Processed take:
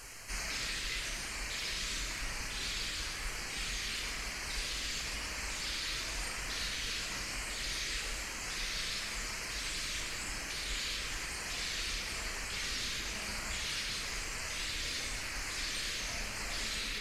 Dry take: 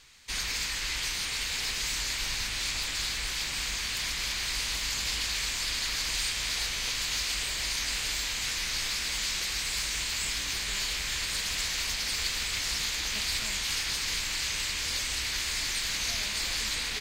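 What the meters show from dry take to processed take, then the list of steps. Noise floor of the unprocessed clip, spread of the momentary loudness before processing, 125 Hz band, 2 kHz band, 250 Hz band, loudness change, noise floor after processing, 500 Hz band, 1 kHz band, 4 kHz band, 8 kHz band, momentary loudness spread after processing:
−33 dBFS, 1 LU, −3.5 dB, −5.0 dB, −1.5 dB, −7.0 dB, −41 dBFS, −1.0 dB, −3.5 dB, −8.0 dB, −8.0 dB, 3 LU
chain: linear delta modulator 64 kbit/s, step −37 dBFS
reverb reduction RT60 1.9 s
auto-filter notch square 1 Hz 820–3,600 Hz
flanger 0.75 Hz, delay 1.8 ms, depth 6.8 ms, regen −71%
comb and all-pass reverb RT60 2.9 s, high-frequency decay 0.5×, pre-delay 0 ms, DRR −2.5 dB

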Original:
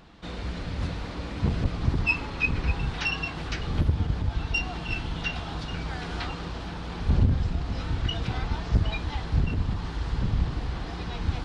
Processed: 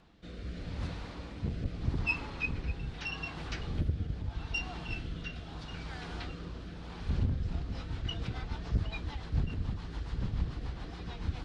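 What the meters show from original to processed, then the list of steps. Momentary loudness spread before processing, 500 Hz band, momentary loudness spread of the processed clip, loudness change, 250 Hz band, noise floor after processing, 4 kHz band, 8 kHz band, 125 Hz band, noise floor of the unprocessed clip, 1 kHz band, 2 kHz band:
9 LU, −8.5 dB, 10 LU, −8.0 dB, −8.0 dB, −45 dBFS, −8.5 dB, can't be measured, −8.0 dB, −36 dBFS, −10.0 dB, −8.5 dB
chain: rotating-speaker cabinet horn 0.8 Hz, later 7 Hz, at 0:07.08
level −6.5 dB

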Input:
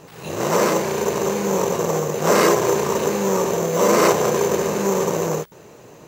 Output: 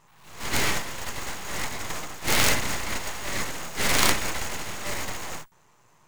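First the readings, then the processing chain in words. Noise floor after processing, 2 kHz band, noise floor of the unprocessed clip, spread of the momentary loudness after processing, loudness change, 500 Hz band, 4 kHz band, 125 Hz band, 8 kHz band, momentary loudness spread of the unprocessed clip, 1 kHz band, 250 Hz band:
−60 dBFS, 0.0 dB, −45 dBFS, 13 LU, −7.5 dB, −19.0 dB, +2.0 dB, −8.5 dB, −3.0 dB, 7 LU, −10.0 dB, −13.5 dB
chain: octave-band graphic EQ 125/250/500/1,000/2,000/8,000 Hz +4/−4/−9/+11/+4/+7 dB
harmonic generator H 3 −15 dB, 6 −18 dB, 7 −18 dB, 8 −7 dB, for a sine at 3 dBFS
half-wave rectification
level −5 dB

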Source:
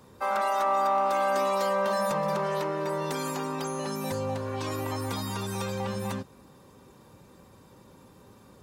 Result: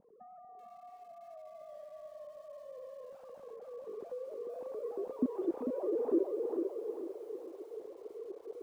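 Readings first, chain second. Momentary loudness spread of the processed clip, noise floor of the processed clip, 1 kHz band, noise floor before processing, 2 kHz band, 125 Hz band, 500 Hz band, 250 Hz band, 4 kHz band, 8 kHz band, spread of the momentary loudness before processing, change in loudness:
18 LU, −55 dBFS, −24.5 dB, −55 dBFS, below −30 dB, below −30 dB, −7.5 dB, −4.0 dB, below −30 dB, below −30 dB, 7 LU, −10.5 dB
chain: three sine waves on the formant tracks
downward compressor 6 to 1, threshold −40 dBFS, peak gain reduction 19 dB
on a send: delay with a low-pass on its return 445 ms, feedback 41%, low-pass 2,600 Hz, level −5.5 dB
on the sum: low-pass filter sweep 200 Hz → 400 Hz, 0:03.46–0:06.71
high-frequency loss of the air 70 metres
feedback echo at a low word length 382 ms, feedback 35%, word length 11 bits, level −14.5 dB
level +10 dB

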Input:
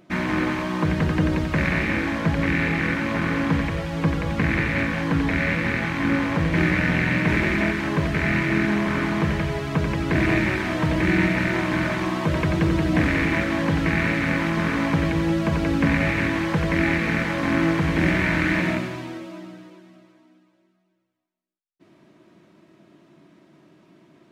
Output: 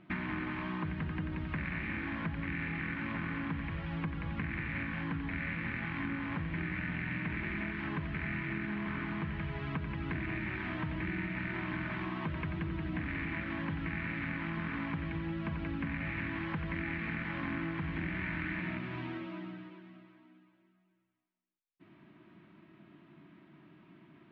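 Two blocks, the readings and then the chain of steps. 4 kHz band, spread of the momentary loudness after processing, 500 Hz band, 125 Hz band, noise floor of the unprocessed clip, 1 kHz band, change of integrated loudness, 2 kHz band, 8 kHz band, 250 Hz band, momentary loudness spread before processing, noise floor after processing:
−17.0 dB, 2 LU, −19.5 dB, −14.0 dB, −64 dBFS, −14.5 dB, −15.0 dB, −14.0 dB, below −35 dB, −15.0 dB, 4 LU, −69 dBFS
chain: low-pass filter 3,100 Hz 24 dB per octave
parametric band 520 Hz −12 dB 0.93 octaves
downward compressor, threshold −33 dBFS, peak gain reduction 15.5 dB
level −1.5 dB

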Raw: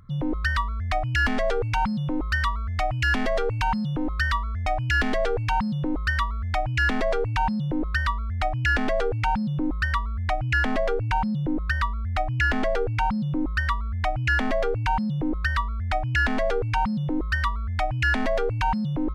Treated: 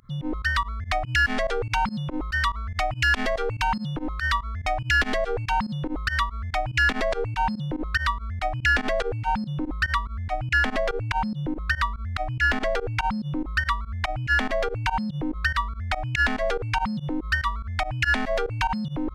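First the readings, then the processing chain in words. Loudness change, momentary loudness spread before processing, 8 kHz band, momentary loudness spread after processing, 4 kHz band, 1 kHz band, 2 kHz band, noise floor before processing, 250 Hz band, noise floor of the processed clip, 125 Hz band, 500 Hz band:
0.0 dB, 5 LU, can't be measured, 7 LU, +3.0 dB, 0.0 dB, +2.0 dB, −28 dBFS, −3.0 dB, −37 dBFS, −3.0 dB, −1.5 dB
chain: tilt shelving filter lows −3.5 dB
fake sidechain pumping 143 BPM, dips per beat 2, −23 dB, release 68 ms
level +1 dB

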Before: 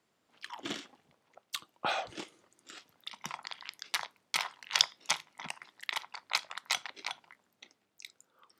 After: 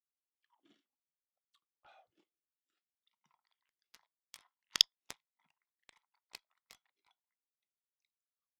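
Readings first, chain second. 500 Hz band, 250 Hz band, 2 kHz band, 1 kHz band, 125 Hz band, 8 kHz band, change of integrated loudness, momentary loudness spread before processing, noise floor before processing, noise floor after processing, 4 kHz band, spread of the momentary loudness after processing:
below −20 dB, below −15 dB, −17.5 dB, −23.0 dB, below −10 dB, −7.5 dB, +5.5 dB, 20 LU, −77 dBFS, below −85 dBFS, −3.0 dB, 9 LU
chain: harmonic generator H 7 −16 dB, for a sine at −1.5 dBFS
every bin expanded away from the loudest bin 1.5 to 1

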